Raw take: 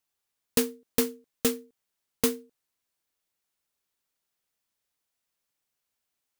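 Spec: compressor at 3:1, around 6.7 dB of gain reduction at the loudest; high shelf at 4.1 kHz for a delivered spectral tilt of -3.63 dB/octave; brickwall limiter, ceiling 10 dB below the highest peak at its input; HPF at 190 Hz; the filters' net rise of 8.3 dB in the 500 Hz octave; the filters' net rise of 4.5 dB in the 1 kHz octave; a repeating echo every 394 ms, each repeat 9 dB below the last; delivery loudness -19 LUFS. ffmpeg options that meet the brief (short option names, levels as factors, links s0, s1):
-af "highpass=190,equalizer=f=500:t=o:g=8.5,equalizer=f=1000:t=o:g=4,highshelf=f=4100:g=-9,acompressor=threshold=0.0631:ratio=3,alimiter=limit=0.0944:level=0:latency=1,aecho=1:1:394|788|1182|1576:0.355|0.124|0.0435|0.0152,volume=8.41"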